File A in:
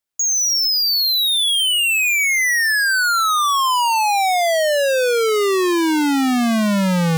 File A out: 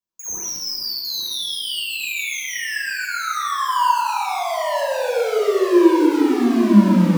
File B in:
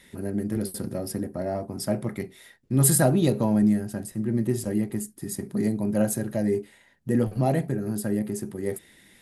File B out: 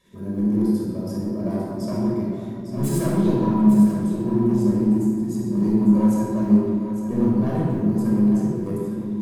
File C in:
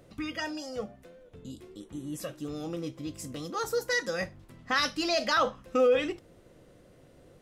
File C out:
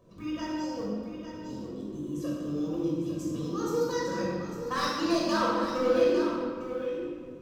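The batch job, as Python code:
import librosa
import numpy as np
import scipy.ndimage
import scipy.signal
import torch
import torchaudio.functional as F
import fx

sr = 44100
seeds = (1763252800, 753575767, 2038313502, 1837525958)

p1 = fx.graphic_eq_31(x, sr, hz=(1000, 2000, 6300, 10000), db=(4, -6, 5, -9))
p2 = fx.level_steps(p1, sr, step_db=14)
p3 = p1 + F.gain(torch.from_numpy(p2), -1.0).numpy()
p4 = np.clip(p3, -10.0 ** (-18.0 / 20.0), 10.0 ** (-18.0 / 20.0))
p5 = fx.quant_float(p4, sr, bits=4)
p6 = fx.small_body(p5, sr, hz=(230.0, 340.0, 970.0), ring_ms=55, db=13)
p7 = p6 + fx.echo_single(p6, sr, ms=853, db=-9.5, dry=0)
p8 = fx.room_shoebox(p7, sr, seeds[0], volume_m3=2700.0, walls='mixed', distance_m=5.7)
y = F.gain(torch.from_numpy(p8), -15.0).numpy()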